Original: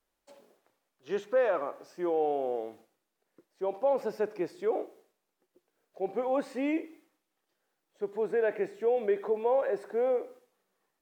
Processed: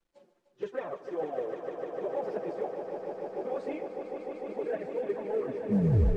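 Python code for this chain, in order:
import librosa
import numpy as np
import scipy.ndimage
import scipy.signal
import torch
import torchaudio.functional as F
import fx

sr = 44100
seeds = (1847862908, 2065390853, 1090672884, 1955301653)

y = fx.tape_stop_end(x, sr, length_s=1.73)
y = fx.low_shelf(y, sr, hz=320.0, db=9.5)
y = fx.stretch_vocoder_free(y, sr, factor=0.56)
y = fx.env_flanger(y, sr, rest_ms=5.9, full_db=-19.0)
y = 10.0 ** (-19.5 / 20.0) * np.tanh(y / 10.0 ** (-19.5 / 20.0))
y = fx.quant_companded(y, sr, bits=8)
y = fx.air_absorb(y, sr, metres=57.0)
y = fx.echo_swell(y, sr, ms=150, loudest=5, wet_db=-9.0)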